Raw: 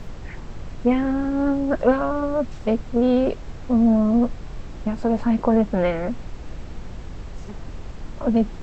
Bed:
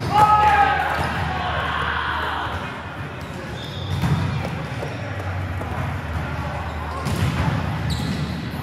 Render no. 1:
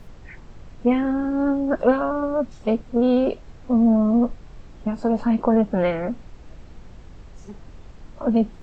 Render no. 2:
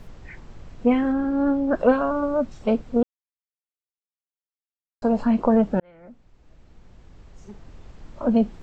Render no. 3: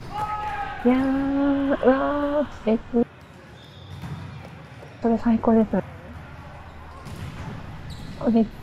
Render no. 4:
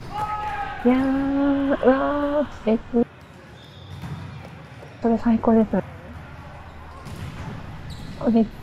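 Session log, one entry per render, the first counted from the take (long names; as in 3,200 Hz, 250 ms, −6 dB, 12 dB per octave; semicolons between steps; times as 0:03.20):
noise reduction from a noise print 8 dB
0:01.12–0:01.74: high-frequency loss of the air 68 metres; 0:03.03–0:05.02: silence; 0:05.80–0:08.25: fade in
mix in bed −14 dB
level +1 dB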